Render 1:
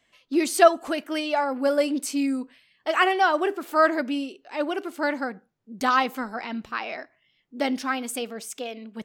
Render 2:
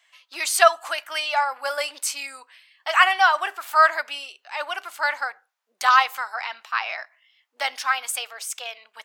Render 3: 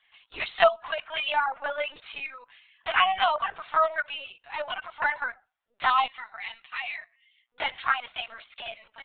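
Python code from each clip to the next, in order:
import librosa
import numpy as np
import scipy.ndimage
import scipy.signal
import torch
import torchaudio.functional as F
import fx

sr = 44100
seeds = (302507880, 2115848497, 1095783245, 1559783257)

y1 = scipy.signal.sosfilt(scipy.signal.butter(4, 840.0, 'highpass', fs=sr, output='sos'), x)
y1 = y1 * 10.0 ** (6.0 / 20.0)
y2 = fx.spec_box(y1, sr, start_s=6.07, length_s=1.4, low_hz=250.0, high_hz=1800.0, gain_db=-11)
y2 = fx.env_flanger(y2, sr, rest_ms=8.7, full_db=-14.0)
y2 = fx.lpc_vocoder(y2, sr, seeds[0], excitation='pitch_kept', order=16)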